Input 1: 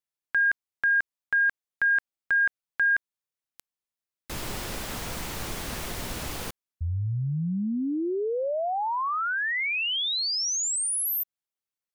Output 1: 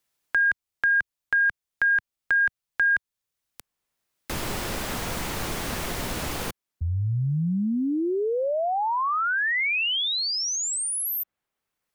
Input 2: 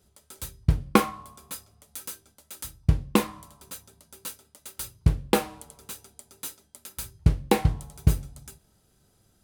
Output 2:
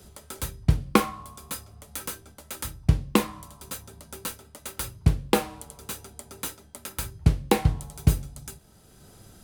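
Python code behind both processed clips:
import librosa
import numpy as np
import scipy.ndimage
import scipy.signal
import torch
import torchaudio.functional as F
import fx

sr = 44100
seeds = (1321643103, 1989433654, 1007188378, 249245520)

y = fx.band_squash(x, sr, depth_pct=40)
y = F.gain(torch.from_numpy(y), 2.5).numpy()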